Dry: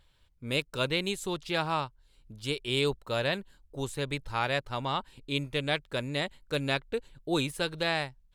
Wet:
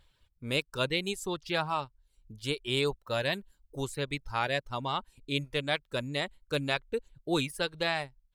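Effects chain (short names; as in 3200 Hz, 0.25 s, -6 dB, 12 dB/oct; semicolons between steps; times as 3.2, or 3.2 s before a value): reverb removal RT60 1.1 s; 3.2–3.81 high shelf 8900 Hz +9.5 dB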